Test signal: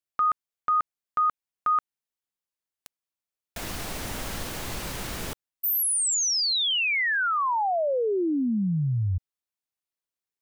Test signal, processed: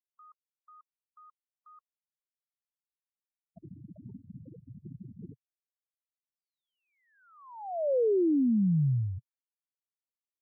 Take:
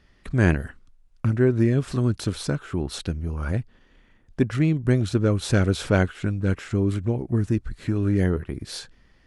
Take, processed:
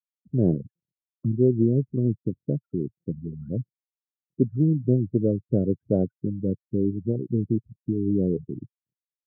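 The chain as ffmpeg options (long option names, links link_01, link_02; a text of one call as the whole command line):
ffmpeg -i in.wav -af "afftfilt=real='re*gte(hypot(re,im),0.0794)':imag='im*gte(hypot(re,im),0.0794)':win_size=1024:overlap=0.75,asuperpass=centerf=260:order=8:qfactor=0.56" out.wav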